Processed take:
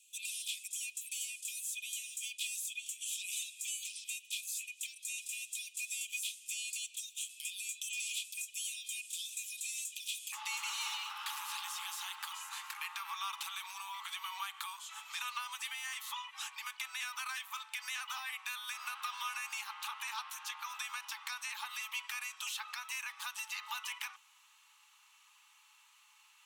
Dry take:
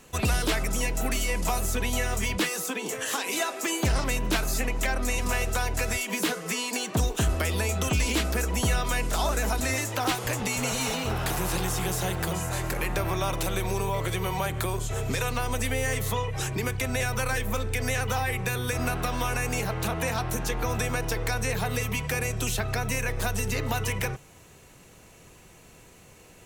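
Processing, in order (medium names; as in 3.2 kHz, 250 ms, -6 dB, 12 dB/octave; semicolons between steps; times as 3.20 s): rippled Chebyshev high-pass 2.4 kHz, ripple 9 dB, from 10.32 s 830 Hz; trim -3.5 dB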